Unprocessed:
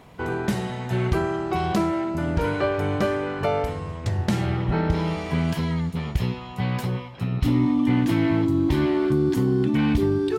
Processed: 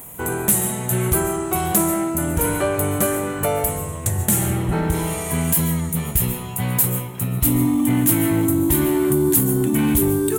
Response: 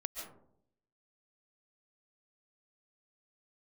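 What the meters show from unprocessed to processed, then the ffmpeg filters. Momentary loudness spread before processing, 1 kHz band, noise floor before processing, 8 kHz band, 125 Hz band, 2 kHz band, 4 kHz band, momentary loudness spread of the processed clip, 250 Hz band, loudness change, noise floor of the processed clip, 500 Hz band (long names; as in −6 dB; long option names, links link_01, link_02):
7 LU, +2.0 dB, −37 dBFS, +24.5 dB, +2.0 dB, +2.0 dB, +2.0 dB, 6 LU, +2.5 dB, +4.5 dB, −30 dBFS, +2.5 dB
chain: -filter_complex "[0:a]asplit=2[link_01][link_02];[1:a]atrim=start_sample=2205[link_03];[link_02][link_03]afir=irnorm=-1:irlink=0,volume=-2dB[link_04];[link_01][link_04]amix=inputs=2:normalize=0,aexciter=amount=15.4:drive=9.5:freq=7700,acontrast=52,volume=-7.5dB"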